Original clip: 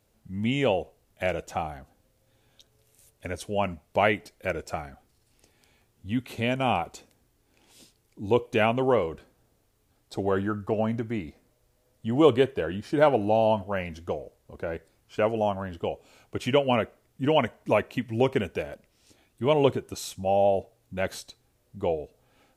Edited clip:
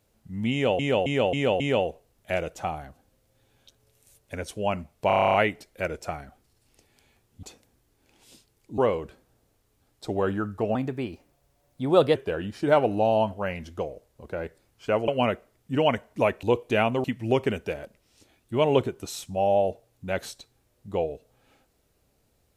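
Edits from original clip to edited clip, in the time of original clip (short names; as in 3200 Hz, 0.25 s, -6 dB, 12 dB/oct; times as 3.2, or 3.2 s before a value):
0.52–0.79 loop, 5 plays
3.99 stutter 0.03 s, 10 plays
6.08–6.91 cut
8.26–8.87 move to 17.93
10.84–12.45 speed 115%
15.38–16.58 cut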